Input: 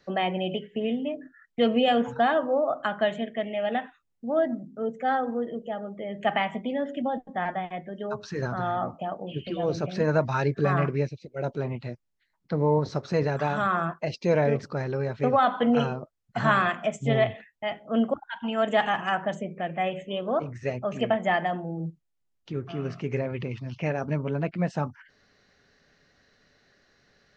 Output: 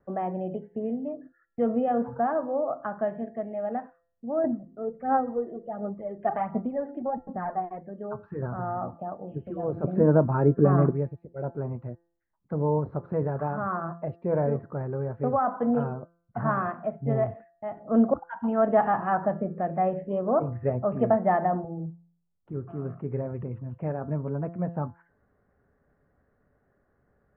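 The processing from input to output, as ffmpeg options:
ffmpeg -i in.wav -filter_complex "[0:a]asettb=1/sr,asplit=3[link_01][link_02][link_03];[link_01]atrim=end=4.444[link_04];[link_02]atrim=start=4.44:end=7.81,asetpts=PTS-STARTPTS,afade=type=in:duration=0.004:curve=qsin,afade=type=out:start_time=3.366:duration=0.004:curve=qsin,aphaser=in_gain=1:out_gain=1:delay=2.9:decay=0.57:speed=1.4:type=sinusoidal[link_05];[link_03]atrim=start=7.806[link_06];[link_04][link_05]acrossfade=duration=0.004:curve1=hsin:curve2=qsin[link_07];[link_07][link_06]acrossfade=duration=0.004:curve1=qsin:curve2=hsin,asettb=1/sr,asplit=3[link_08][link_09][link_10];[link_08]atrim=end=9.844[link_11];[link_09]atrim=start=9.84:end=10.91,asetpts=PTS-STARTPTS,afade=type=in:duration=0.004:curve=qsin,afade=type=out:start_time=1.066:duration=0.004:curve=qsin,equalizer=frequency=280:width=0.66:gain=10.5[link_12];[link_10]atrim=start=10.906[link_13];[link_11][link_12]acrossfade=duration=0.004:curve1=hsin:curve2=qsin[link_14];[link_14][link_13]acrossfade=duration=0.004:curve1=qsin:curve2=hsin,asettb=1/sr,asplit=3[link_15][link_16][link_17];[link_15]atrim=end=17.774[link_18];[link_16]atrim=start=17.77:end=21.65,asetpts=PTS-STARTPTS,afade=type=in:duration=0.004:curve=qsin,afade=type=out:start_time=3.876:duration=0.004:curve=qsin,acontrast=49[link_19];[link_17]atrim=start=21.646[link_20];[link_18][link_19]acrossfade=duration=0.004:curve1=hsin:curve2=qsin[link_21];[link_21][link_20]acrossfade=duration=0.004:curve1=qsin:curve2=hsin,lowpass=frequency=1300:width=0.5412,lowpass=frequency=1300:width=1.3066,equalizer=frequency=64:width_type=o:width=1.5:gain=7,bandreject=frequency=170.3:width_type=h:width=4,bandreject=frequency=340.6:width_type=h:width=4,bandreject=frequency=510.9:width_type=h:width=4,bandreject=frequency=681.2:width_type=h:width=4,bandreject=frequency=851.5:width_type=h:width=4,bandreject=frequency=1021.8:width_type=h:width=4,bandreject=frequency=1192.1:width_type=h:width=4,bandreject=frequency=1362.4:width_type=h:width=4,bandreject=frequency=1532.7:width_type=h:width=4,bandreject=frequency=1703:width_type=h:width=4,bandreject=frequency=1873.3:width_type=h:width=4,volume=-3dB" out.wav

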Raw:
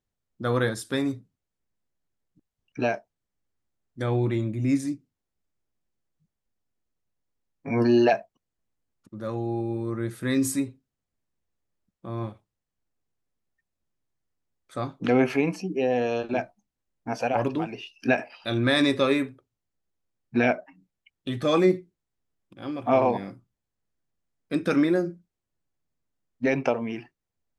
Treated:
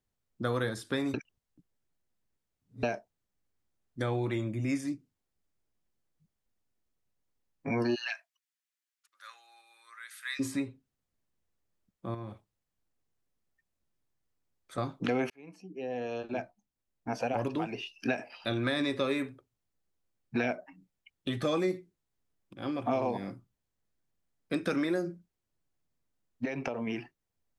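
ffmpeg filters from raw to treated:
ffmpeg -i in.wav -filter_complex "[0:a]asettb=1/sr,asplit=3[link_01][link_02][link_03];[link_01]atrim=end=4.334[link_04];[link_02]atrim=start=4.33:end=4.85,asetpts=PTS-STARTPTS,afade=type=in:duration=0.004:curve=qsin,afade=type=out:start_time=0.516:duration=0.004:curve=qsin,asuperstop=centerf=4000:order=8:qfactor=7.2[link_05];[link_03]atrim=start=4.846[link_06];[link_04][link_05]acrossfade=duration=0.004:curve1=hsin:curve2=qsin[link_07];[link_07][link_06]acrossfade=duration=0.004:curve1=qsin:curve2=hsin,asplit=3[link_08][link_09][link_10];[link_08]afade=type=out:start_time=7.94:duration=0.02[link_11];[link_09]highpass=frequency=1500:width=0.5412,highpass=frequency=1500:width=1.3066,afade=type=in:start_time=7.94:duration=0.02,afade=type=out:start_time=10.39:duration=0.02[link_12];[link_10]afade=type=in:start_time=10.39:duration=0.02[link_13];[link_11][link_12][link_13]amix=inputs=3:normalize=0,asettb=1/sr,asplit=3[link_14][link_15][link_16];[link_14]atrim=end=12.144[link_17];[link_15]atrim=start=12.14:end=14.78,asetpts=PTS-STARTPTS,afade=type=in:duration=0.004:curve=qsin,afade=type=out:start_time=2.636:duration=0.004:curve=qsin,acompressor=threshold=-35dB:ratio=10:attack=3.2:release=140:knee=1:detection=peak[link_18];[link_16]atrim=start=14.776[link_19];[link_17][link_18]acrossfade=duration=0.004:curve1=hsin:curve2=qsin[link_20];[link_20][link_19]acrossfade=duration=0.004:curve1=qsin:curve2=hsin,asettb=1/sr,asplit=3[link_21][link_22][link_23];[link_21]atrim=end=26.454[link_24];[link_22]atrim=start=26.45:end=26.87,asetpts=PTS-STARTPTS,afade=type=in:duration=0.004:curve=qsin,afade=type=out:start_time=0.416:duration=0.004:curve=qsin,acompressor=threshold=-29dB:ratio=5:attack=3.2:release=140:knee=1:detection=peak[link_25];[link_23]atrim=start=26.866[link_26];[link_24][link_25]acrossfade=duration=0.004:curve1=hsin:curve2=qsin[link_27];[link_27][link_26]acrossfade=duration=0.004:curve1=qsin:curve2=hsin,asplit=4[link_28][link_29][link_30][link_31];[link_28]atrim=end=1.142[link_32];[link_29]atrim=start=1.138:end=2.832,asetpts=PTS-STARTPTS,areverse[link_33];[link_30]atrim=start=2.828:end=15.3,asetpts=PTS-STARTPTS,afade=type=out:start_time=12.468:duration=0.004:curve=hsin[link_34];[link_31]atrim=start=15.3,asetpts=PTS-STARTPTS,afade=type=in:duration=2.44[link_35];[link_32][link_33]acrossfade=duration=0.004:curve1=hsin:curve2=hsin[link_36];[link_34][link_35]concat=n=2:v=0:a=1[link_37];[link_36][link_37]acrossfade=duration=0.004:curve1=hsin:curve2=hsin,acrossover=split=480|4300[link_38][link_39][link_40];[link_38]acompressor=threshold=-32dB:ratio=4[link_41];[link_39]acompressor=threshold=-33dB:ratio=4[link_42];[link_40]acompressor=threshold=-49dB:ratio=4[link_43];[link_41][link_42][link_43]amix=inputs=3:normalize=0" out.wav

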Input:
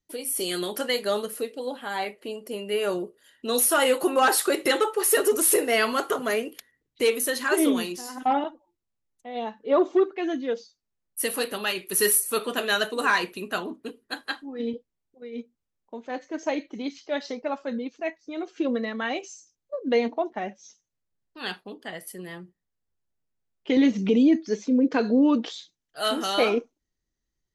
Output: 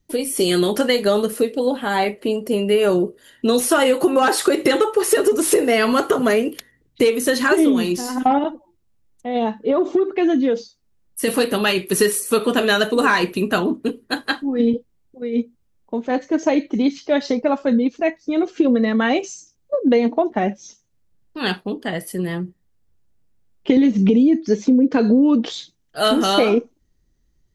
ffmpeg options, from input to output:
ffmpeg -i in.wav -filter_complex "[0:a]asettb=1/sr,asplit=3[link_01][link_02][link_03];[link_01]atrim=end=8.384[link_04];[link_02]atrim=start=8.38:end=11.28,asetpts=PTS-STARTPTS,afade=type=in:duration=0.004:curve=qsin,afade=type=out:start_time=2.896:duration=0.004:curve=qsin,acompressor=threshold=-26dB:ratio=6:attack=3.2:release=140:knee=1:detection=peak[link_05];[link_03]atrim=start=11.276[link_06];[link_04][link_05]acrossfade=duration=0.004:curve1=hsin:curve2=qsin[link_07];[link_07][link_06]acrossfade=duration=0.004:curve1=qsin:curve2=hsin,acrossover=split=9000[link_08][link_09];[link_09]acompressor=threshold=-43dB:ratio=4:attack=1:release=60[link_10];[link_08][link_10]amix=inputs=2:normalize=0,lowshelf=frequency=360:gain=11.5,acompressor=threshold=-21dB:ratio=6,volume=8.5dB" out.wav

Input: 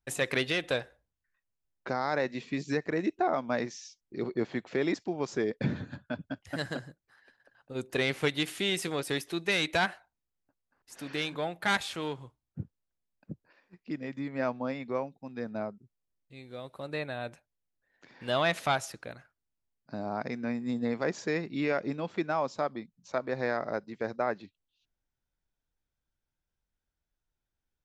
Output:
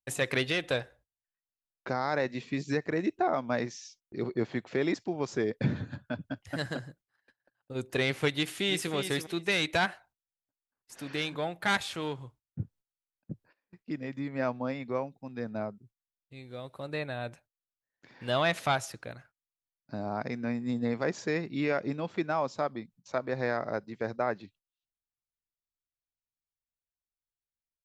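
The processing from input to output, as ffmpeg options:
ffmpeg -i in.wav -filter_complex "[0:a]asplit=2[link_01][link_02];[link_02]afade=type=in:start_time=8.34:duration=0.01,afade=type=out:start_time=8.93:duration=0.01,aecho=0:1:330|660:0.375837|0.0563756[link_03];[link_01][link_03]amix=inputs=2:normalize=0,agate=range=-19dB:threshold=-59dB:ratio=16:detection=peak,equalizer=frequency=110:width=2.1:gain=5" out.wav

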